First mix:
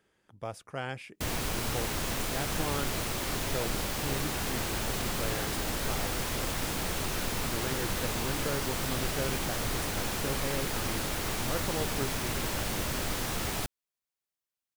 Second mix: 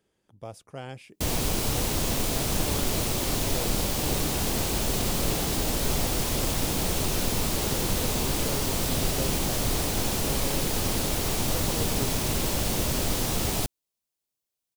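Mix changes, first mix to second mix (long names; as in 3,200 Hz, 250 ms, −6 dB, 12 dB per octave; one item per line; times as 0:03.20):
background +7.0 dB
master: add parametric band 1,600 Hz −8.5 dB 1.5 octaves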